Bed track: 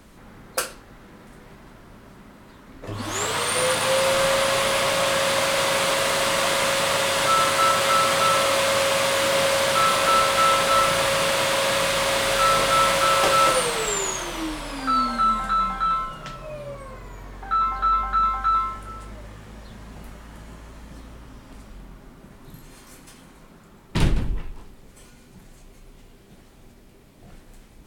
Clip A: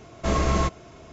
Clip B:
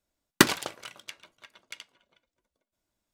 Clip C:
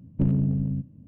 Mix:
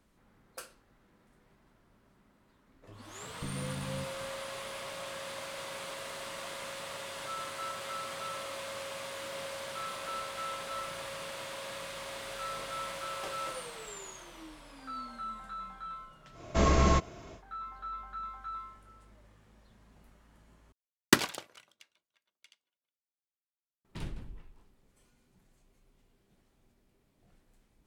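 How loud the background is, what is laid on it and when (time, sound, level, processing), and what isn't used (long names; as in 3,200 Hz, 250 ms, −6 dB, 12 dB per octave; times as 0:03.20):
bed track −20 dB
0:03.23: mix in C −6 dB + downward compressor, threshold −30 dBFS
0:16.31: mix in A −2 dB, fades 0.10 s
0:20.72: overwrite with B −10.5 dB + multiband upward and downward expander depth 70%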